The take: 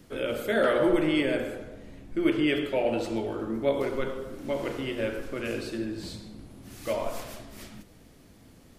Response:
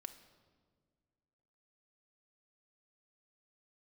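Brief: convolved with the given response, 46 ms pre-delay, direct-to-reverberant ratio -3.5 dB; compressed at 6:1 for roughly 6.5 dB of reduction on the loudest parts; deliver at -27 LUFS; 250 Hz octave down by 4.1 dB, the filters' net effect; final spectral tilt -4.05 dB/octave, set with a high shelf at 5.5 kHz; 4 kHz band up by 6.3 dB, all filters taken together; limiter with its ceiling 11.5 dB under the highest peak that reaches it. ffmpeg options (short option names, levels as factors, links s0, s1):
-filter_complex "[0:a]equalizer=f=250:t=o:g=-6,equalizer=f=4000:t=o:g=7.5,highshelf=f=5500:g=3.5,acompressor=threshold=0.0447:ratio=6,alimiter=level_in=1.68:limit=0.0631:level=0:latency=1,volume=0.596,asplit=2[s0][s1];[1:a]atrim=start_sample=2205,adelay=46[s2];[s1][s2]afir=irnorm=-1:irlink=0,volume=2.66[s3];[s0][s3]amix=inputs=2:normalize=0,volume=1.88"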